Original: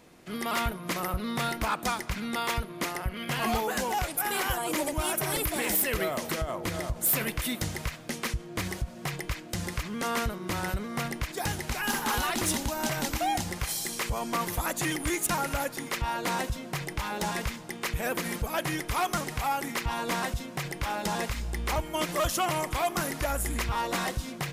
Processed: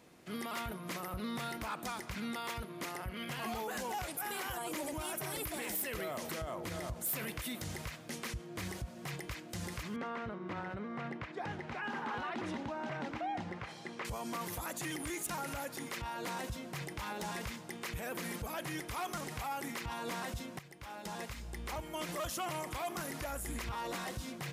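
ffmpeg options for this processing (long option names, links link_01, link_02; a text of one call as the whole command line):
ffmpeg -i in.wav -filter_complex "[0:a]asettb=1/sr,asplit=3[link_01][link_02][link_03];[link_01]atrim=end=9.964[link_04];[link_02]atrim=start=9.96:end=14.05,asetpts=PTS-STARTPTS,afade=type=in:duration=0.004:curve=qsin,afade=type=out:start_time=4.086:duration=0.004:curve=qsin,highpass=130,lowpass=2100[link_05];[link_03]atrim=start=14.046[link_06];[link_04][link_05]acrossfade=duration=0.004:curve1=hsin:curve2=qsin[link_07];[link_07][link_06]acrossfade=duration=0.004:curve1=qsin:curve2=hsin,asplit=2[link_08][link_09];[link_08]atrim=end=20.59,asetpts=PTS-STARTPTS,afade=type=out:start_time=20.586:duration=0.004:curve=hsin:silence=0.149624[link_10];[link_09]atrim=start=20.59,asetpts=PTS-STARTPTS,afade=type=in:duration=1.62:silence=0.149624[link_11];[link_10][link_11]concat=n=2:v=0:a=1,highpass=57,alimiter=level_in=2dB:limit=-24dB:level=0:latency=1:release=30,volume=-2dB,volume=-5dB" out.wav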